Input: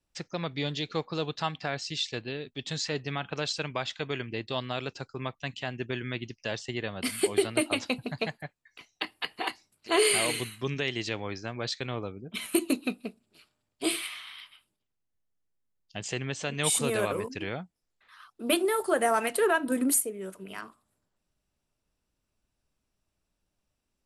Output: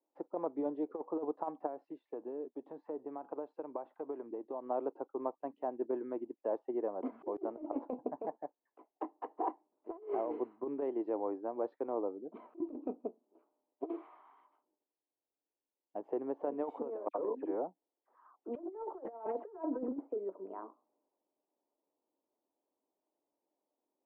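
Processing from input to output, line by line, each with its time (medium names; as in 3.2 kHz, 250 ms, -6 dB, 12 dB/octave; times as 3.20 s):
1.66–4.66 s: compression, threshold -34 dBFS
17.08–20.29 s: phase dispersion lows, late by 69 ms, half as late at 2.5 kHz
whole clip: Chebyshev band-pass 290–950 Hz, order 3; compressor with a negative ratio -34 dBFS, ratio -0.5; trim -1.5 dB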